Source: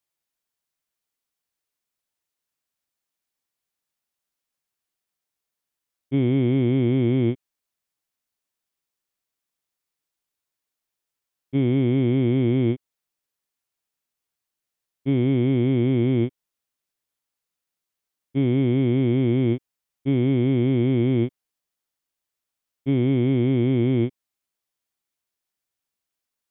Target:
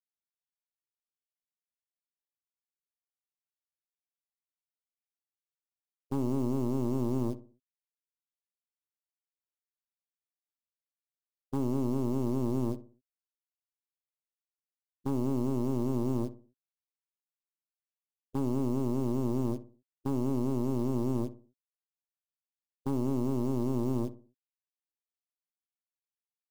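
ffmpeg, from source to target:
-filter_complex "[0:a]afftfilt=real='re*gte(hypot(re,im),0.0178)':imag='im*gte(hypot(re,im),0.0178)':win_size=1024:overlap=0.75,highshelf=f=2200:g=-5.5,bandreject=f=1600:w=10,acrusher=bits=5:mode=log:mix=0:aa=0.000001,acompressor=threshold=0.00794:ratio=3,aeval=exprs='0.0355*(cos(1*acos(clip(val(0)/0.0355,-1,1)))-cos(1*PI/2))+0.01*(cos(4*acos(clip(val(0)/0.0355,-1,1)))-cos(4*PI/2))':c=same,equalizer=f=250:t=o:w=1:g=4,equalizer=f=1000:t=o:w=1:g=3,equalizer=f=2000:t=o:w=1:g=-7,asplit=2[s0][s1];[s1]adelay=62,lowpass=f=1100:p=1,volume=0.224,asplit=2[s2][s3];[s3]adelay=62,lowpass=f=1100:p=1,volume=0.4,asplit=2[s4][s5];[s5]adelay=62,lowpass=f=1100:p=1,volume=0.4,asplit=2[s6][s7];[s7]adelay=62,lowpass=f=1100:p=1,volume=0.4[s8];[s0][s2][s4][s6][s8]amix=inputs=5:normalize=0,volume=1.41"

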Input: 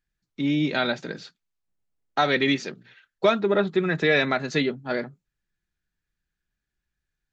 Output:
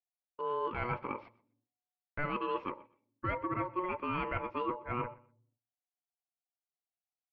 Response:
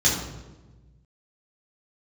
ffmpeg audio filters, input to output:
-filter_complex "[0:a]lowpass=f=1700:w=0.5412,lowpass=f=1700:w=1.3066,agate=range=0.0447:threshold=0.00447:ratio=16:detection=peak,equalizer=f=180:t=o:w=0.4:g=-4,areverse,acompressor=threshold=0.0282:ratio=6,areverse,aeval=exprs='val(0)*sin(2*PI*730*n/s)':c=same,aecho=1:1:123|246:0.0794|0.0159,asplit=2[s0][s1];[1:a]atrim=start_sample=2205,asetrate=83790,aresample=44100[s2];[s1][s2]afir=irnorm=-1:irlink=0,volume=0.0158[s3];[s0][s3]amix=inputs=2:normalize=0,volume=1.19"

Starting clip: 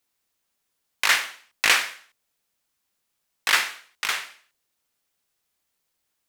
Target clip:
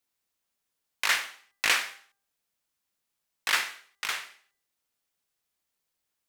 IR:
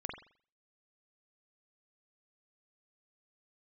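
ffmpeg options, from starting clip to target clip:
-af "bandreject=f=397.6:t=h:w=4,bandreject=f=795.2:t=h:w=4,bandreject=f=1192.8:t=h:w=4,bandreject=f=1590.4:t=h:w=4,bandreject=f=1988:t=h:w=4,volume=0.531"

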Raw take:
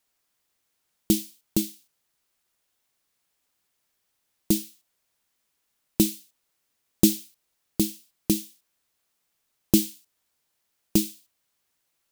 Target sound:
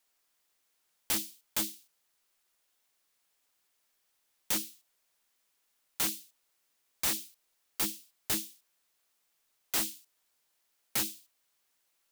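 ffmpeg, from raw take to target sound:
-af "equalizer=f=97:w=0.44:g=-9.5,alimiter=limit=0.237:level=0:latency=1:release=36,aeval=exprs='(mod(14.1*val(0)+1,2)-1)/14.1':c=same"

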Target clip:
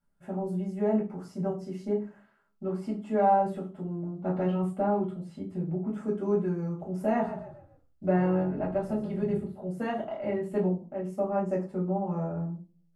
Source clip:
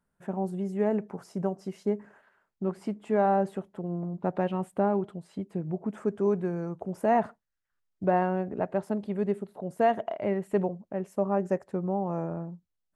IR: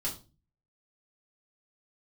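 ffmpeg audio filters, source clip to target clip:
-filter_complex "[0:a]asettb=1/sr,asplit=3[s0][s1][s2];[s0]atrim=end=7.134[s3];[s1]atrim=start=7.13:end=9.43,asetpts=PTS-STARTPTS,afade=t=in:d=0.004:c=qsin,afade=t=out:st=2.296:d=0.004:c=qsin,asplit=5[s4][s5][s6][s7][s8];[s5]adelay=137,afreqshift=-42,volume=0.282[s9];[s6]adelay=274,afreqshift=-84,volume=0.105[s10];[s7]adelay=411,afreqshift=-126,volume=0.0385[s11];[s8]adelay=548,afreqshift=-168,volume=0.0143[s12];[s4][s9][s10][s11][s12]amix=inputs=5:normalize=0,atrim=end_sample=101430[s13];[s2]atrim=start=9.426[s14];[s3][s13]acrossfade=d=0.004:c1=hsin:c2=qsin[s15];[s15][s14]acrossfade=d=0.004:c1=qsin:c2=hsin[s16];[1:a]atrim=start_sample=2205[s17];[s16][s17]afir=irnorm=-1:irlink=0,volume=0.531"

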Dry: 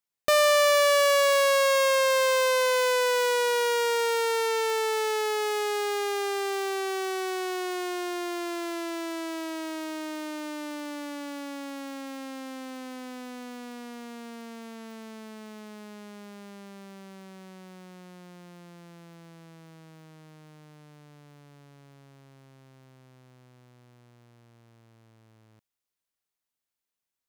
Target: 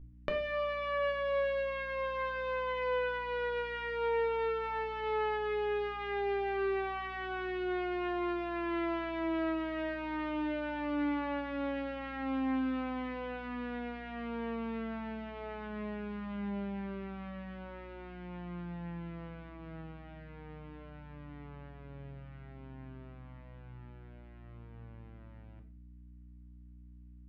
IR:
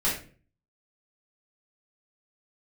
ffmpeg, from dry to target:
-filter_complex "[0:a]lowpass=f=2700:w=0.5412,lowpass=f=2700:w=1.3066,acompressor=threshold=0.0178:ratio=12,aeval=exprs='val(0)+0.002*(sin(2*PI*60*n/s)+sin(2*PI*2*60*n/s)/2+sin(2*PI*3*60*n/s)/3+sin(2*PI*4*60*n/s)/4+sin(2*PI*5*60*n/s)/5)':c=same,asplit=2[s0][s1];[1:a]atrim=start_sample=2205,asetrate=43659,aresample=44100,lowshelf=f=87:g=5.5[s2];[s1][s2]afir=irnorm=-1:irlink=0,volume=0.251[s3];[s0][s3]amix=inputs=2:normalize=0"

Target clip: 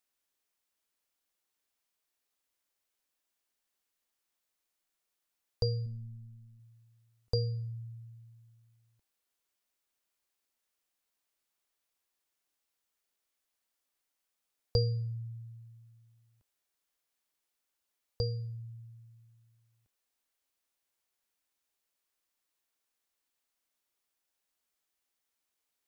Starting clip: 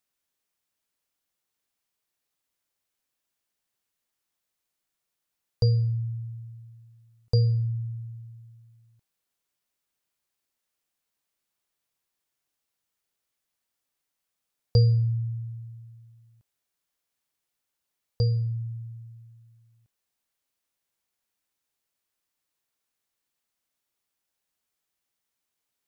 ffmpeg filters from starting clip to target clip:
-filter_complex "[0:a]equalizer=f=130:t=o:w=0.83:g=-12,asettb=1/sr,asplit=3[s0][s1][s2];[s0]atrim=end=5.864[s3];[s1]atrim=start=5.86:end=6.6,asetpts=PTS-STARTPTS,afade=t=in:d=0.004:c=qsin,afade=t=out:st=0.736:d=0.004:c=qsin,tremolo=f=110:d=0.519[s4];[s2]atrim=start=6.596[s5];[s3][s4]acrossfade=d=0.004:c1=hsin:c2=qsin[s6];[s6][s5]acrossfade=d=0.004:c1=qsin:c2=hsin,volume=0.841"

